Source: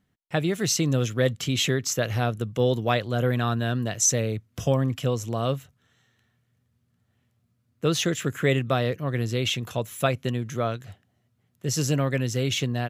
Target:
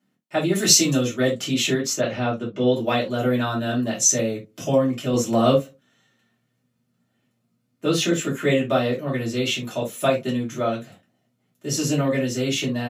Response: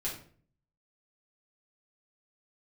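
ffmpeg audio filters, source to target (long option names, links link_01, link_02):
-filter_complex "[0:a]highpass=frequency=160:width=0.5412,highpass=frequency=160:width=1.3066,asettb=1/sr,asplit=3[link_01][link_02][link_03];[link_01]atrim=end=0.554[link_04];[link_02]atrim=start=0.55:end=0.97,asetpts=PTS-STARTPTS,afade=type=in:duration=0.004:curve=qsin,afade=type=out:start_time=0.416:duration=0.004:curve=qsin,highshelf=frequency=2300:gain=9.5[link_05];[link_03]atrim=start=0.966[link_06];[link_04][link_05]acrossfade=duration=0.004:curve1=hsin:curve2=qsin[link_07];[link_07][link_06]acrossfade=duration=0.004:curve1=qsin:curve2=hsin,asettb=1/sr,asplit=3[link_08][link_09][link_10];[link_08]atrim=end=1.934[link_11];[link_09]atrim=start=1.93:end=2.75,asetpts=PTS-STARTPTS,afade=type=in:duration=0.004:curve=qsin,afade=type=out:start_time=0.816:duration=0.004:curve=qsin,lowpass=3900[link_12];[link_10]atrim=start=2.746[link_13];[link_11][link_12]acrossfade=duration=0.004:curve1=hsin:curve2=qsin[link_14];[link_14][link_13]acrossfade=duration=0.004:curve1=qsin:curve2=hsin,asettb=1/sr,asplit=3[link_15][link_16][link_17];[link_15]atrim=end=5.134[link_18];[link_16]atrim=start=5.13:end=5.54,asetpts=PTS-STARTPTS,afade=type=in:duration=0.004:curve=qsin,afade=type=out:start_time=0.406:duration=0.004:curve=qsin,acontrast=54[link_19];[link_17]atrim=start=5.536[link_20];[link_18][link_19]acrossfade=duration=0.004:curve1=hsin:curve2=qsin[link_21];[link_21][link_20]acrossfade=duration=0.004:curve1=qsin:curve2=hsin,asplit=2[link_22][link_23];[link_23]adelay=65,lowpass=frequency=1000:poles=1,volume=-23dB,asplit=2[link_24][link_25];[link_25]adelay=65,lowpass=frequency=1000:poles=1,volume=0.42,asplit=2[link_26][link_27];[link_27]adelay=65,lowpass=frequency=1000:poles=1,volume=0.42[link_28];[link_22][link_24][link_26][link_28]amix=inputs=4:normalize=0[link_29];[1:a]atrim=start_sample=2205,atrim=end_sample=6174,asetrate=74970,aresample=44100[link_30];[link_29][link_30]afir=irnorm=-1:irlink=0,volume=4.5dB"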